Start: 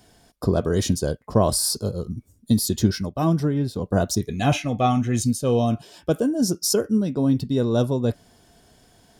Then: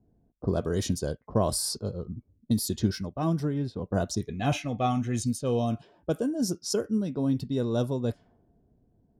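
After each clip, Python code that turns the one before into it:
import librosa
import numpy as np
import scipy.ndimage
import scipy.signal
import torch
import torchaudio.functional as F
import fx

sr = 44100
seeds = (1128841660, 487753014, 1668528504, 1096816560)

y = fx.env_lowpass(x, sr, base_hz=320.0, full_db=-17.5)
y = y * 10.0 ** (-6.5 / 20.0)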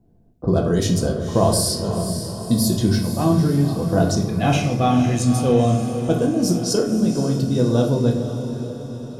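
y = fx.echo_diffused(x, sr, ms=509, feedback_pct=55, wet_db=-9.5)
y = fx.room_shoebox(y, sr, seeds[0], volume_m3=180.0, walls='mixed', distance_m=0.75)
y = y * 10.0 ** (6.5 / 20.0)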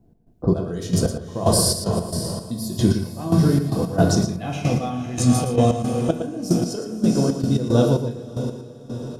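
y = fx.step_gate(x, sr, bpm=113, pattern='x.xx...x...xx.', floor_db=-12.0, edge_ms=4.5)
y = y + 10.0 ** (-9.5 / 20.0) * np.pad(y, (int(114 * sr / 1000.0), 0))[:len(y)]
y = y * 10.0 ** (1.5 / 20.0)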